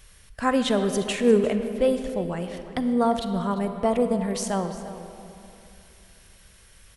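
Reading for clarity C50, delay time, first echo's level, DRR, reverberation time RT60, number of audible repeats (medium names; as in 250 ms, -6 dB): 8.0 dB, 348 ms, -16.0 dB, 7.5 dB, 2.9 s, 1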